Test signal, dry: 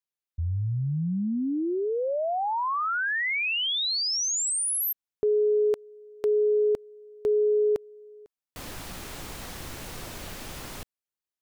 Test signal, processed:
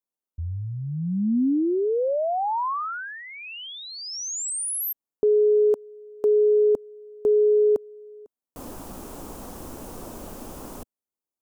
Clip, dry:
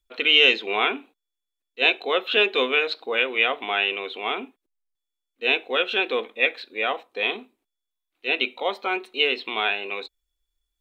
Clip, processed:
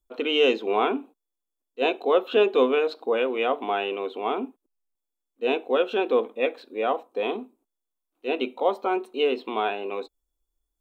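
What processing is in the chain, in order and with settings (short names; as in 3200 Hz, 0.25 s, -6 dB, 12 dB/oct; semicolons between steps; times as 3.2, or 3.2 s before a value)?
ten-band EQ 125 Hz -5 dB, 250 Hz +7 dB, 500 Hz +3 dB, 1000 Hz +4 dB, 2000 Hz -12 dB, 4000 Hz -9 dB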